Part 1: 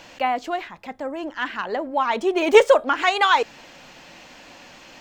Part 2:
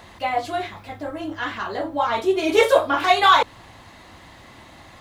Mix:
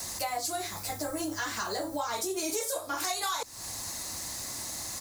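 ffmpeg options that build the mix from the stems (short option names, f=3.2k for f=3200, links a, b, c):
-filter_complex "[0:a]acrossover=split=410|3000[a][b][c];[b]acompressor=threshold=-21dB:ratio=6[d];[a][d][c]amix=inputs=3:normalize=0,volume=-11dB,asplit=2[e][f];[1:a]volume=-1,adelay=2.2,volume=-1dB[g];[f]apad=whole_len=221035[h];[g][h]sidechaincompress=threshold=-31dB:ratio=8:attack=16:release=797[i];[e][i]amix=inputs=2:normalize=0,aexciter=amount=14.6:drive=4.8:freq=4.7k,acompressor=threshold=-30dB:ratio=6"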